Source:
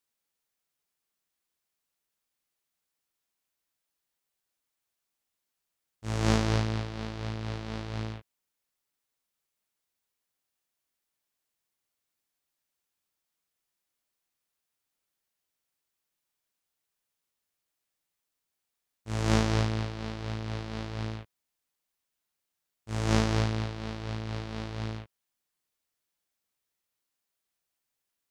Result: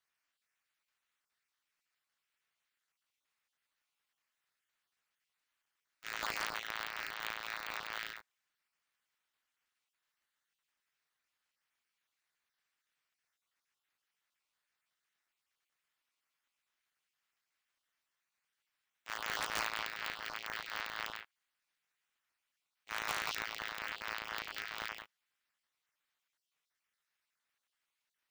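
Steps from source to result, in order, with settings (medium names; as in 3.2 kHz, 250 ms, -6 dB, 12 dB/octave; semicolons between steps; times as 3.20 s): random holes in the spectrogram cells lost 26%; tilt EQ -4.5 dB/octave; in parallel at 0 dB: compressor with a negative ratio -19 dBFS, ratio -0.5; on the sum: ladder high-pass 1.2 kHz, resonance 25%; wavefolder -30.5 dBFS; polarity switched at an audio rate 150 Hz; trim +7.5 dB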